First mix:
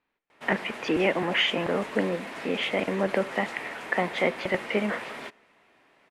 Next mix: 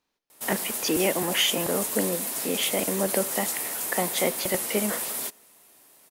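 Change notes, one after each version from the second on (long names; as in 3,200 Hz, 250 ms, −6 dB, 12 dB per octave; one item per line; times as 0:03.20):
master: remove low-pass with resonance 2,200 Hz, resonance Q 1.6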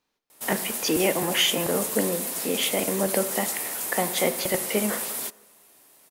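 speech: send +9.0 dB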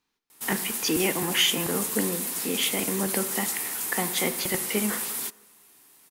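master: add parametric band 590 Hz −11.5 dB 0.56 octaves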